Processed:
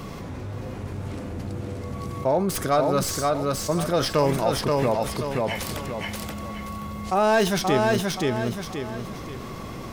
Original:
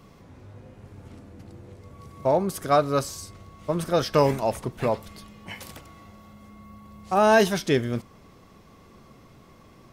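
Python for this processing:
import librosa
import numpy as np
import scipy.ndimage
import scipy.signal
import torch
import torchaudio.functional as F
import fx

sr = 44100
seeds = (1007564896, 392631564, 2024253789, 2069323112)

y = fx.tracing_dist(x, sr, depth_ms=0.053)
y = fx.echo_feedback(y, sr, ms=528, feedback_pct=21, wet_db=-4.5)
y = fx.env_flatten(y, sr, amount_pct=50)
y = F.gain(torch.from_numpy(y), -3.0).numpy()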